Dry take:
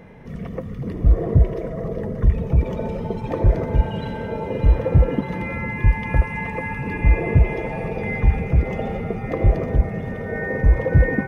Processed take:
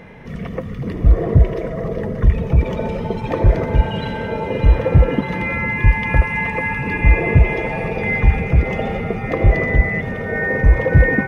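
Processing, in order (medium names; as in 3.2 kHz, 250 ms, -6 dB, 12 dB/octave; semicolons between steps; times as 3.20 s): peaking EQ 2.6 kHz +6 dB 2.5 oct; 9.51–10.00 s: whistle 2 kHz -24 dBFS; trim +3 dB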